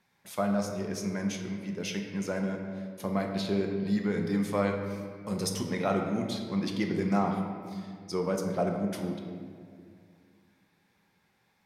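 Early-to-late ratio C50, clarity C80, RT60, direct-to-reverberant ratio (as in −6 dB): 4.5 dB, 5.5 dB, 2.1 s, 2.0 dB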